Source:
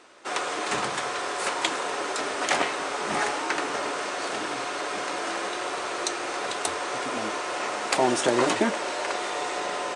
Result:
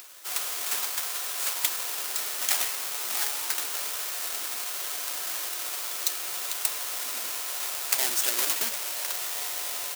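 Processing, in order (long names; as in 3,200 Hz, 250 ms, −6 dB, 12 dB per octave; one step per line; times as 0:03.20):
each half-wave held at its own peak
first difference
upward compression, threshold −37 dBFS
level +1 dB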